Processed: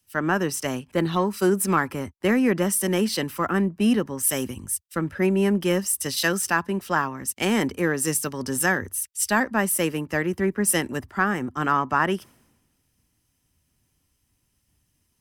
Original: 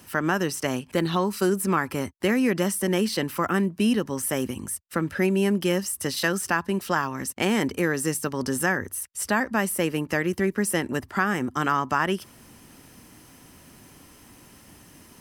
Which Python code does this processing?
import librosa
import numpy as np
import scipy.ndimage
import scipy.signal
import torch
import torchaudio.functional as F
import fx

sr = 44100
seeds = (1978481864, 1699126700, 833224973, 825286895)

p1 = fx.notch(x, sr, hz=4300.0, q=25.0)
p2 = 10.0 ** (-23.0 / 20.0) * np.tanh(p1 / 10.0 ** (-23.0 / 20.0))
p3 = p1 + F.gain(torch.from_numpy(p2), -12.0).numpy()
y = fx.band_widen(p3, sr, depth_pct=100)